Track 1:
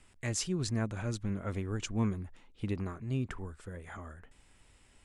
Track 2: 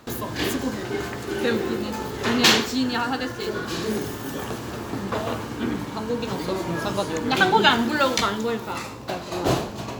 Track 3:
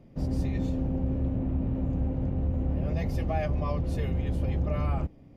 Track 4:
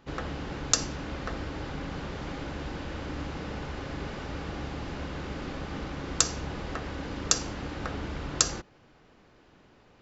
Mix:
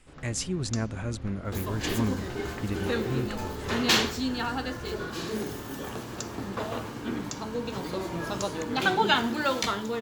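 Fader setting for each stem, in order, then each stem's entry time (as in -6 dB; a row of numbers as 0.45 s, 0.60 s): +2.5 dB, -6.0 dB, -16.0 dB, -15.0 dB; 0.00 s, 1.45 s, 0.00 s, 0.00 s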